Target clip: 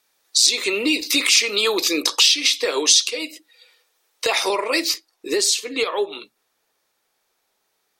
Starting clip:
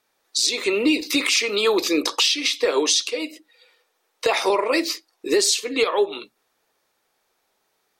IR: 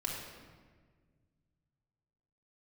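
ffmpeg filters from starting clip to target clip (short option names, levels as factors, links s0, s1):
-af "asetnsamples=n=441:p=0,asendcmd='4.94 highshelf g 4.5',highshelf=f=2200:g=10,volume=0.708"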